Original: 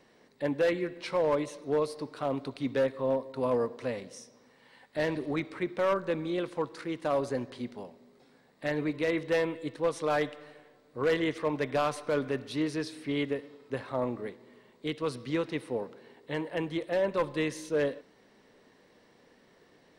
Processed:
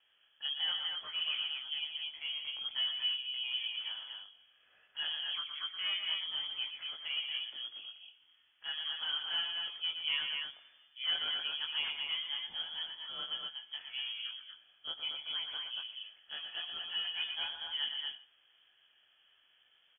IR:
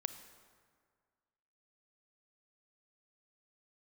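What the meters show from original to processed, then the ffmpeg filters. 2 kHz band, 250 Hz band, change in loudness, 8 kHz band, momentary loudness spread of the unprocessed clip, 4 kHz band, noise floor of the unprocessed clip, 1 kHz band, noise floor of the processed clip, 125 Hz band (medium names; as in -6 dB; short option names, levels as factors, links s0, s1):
-4.0 dB, under -35 dB, -4.0 dB, under -30 dB, 11 LU, +14.0 dB, -62 dBFS, -15.5 dB, -70 dBFS, under -30 dB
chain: -af "flanger=delay=18:depth=3.2:speed=0.82,aecho=1:1:119.5|236.2:0.447|0.631,lowpass=f=3000:t=q:w=0.5098,lowpass=f=3000:t=q:w=0.6013,lowpass=f=3000:t=q:w=0.9,lowpass=f=3000:t=q:w=2.563,afreqshift=-3500,volume=0.473"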